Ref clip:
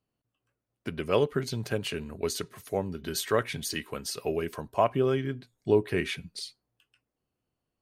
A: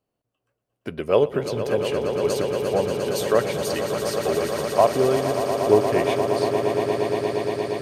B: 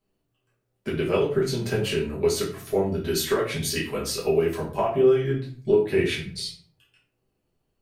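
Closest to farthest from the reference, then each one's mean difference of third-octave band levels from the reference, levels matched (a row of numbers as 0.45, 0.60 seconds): B, A; 5.5, 10.5 decibels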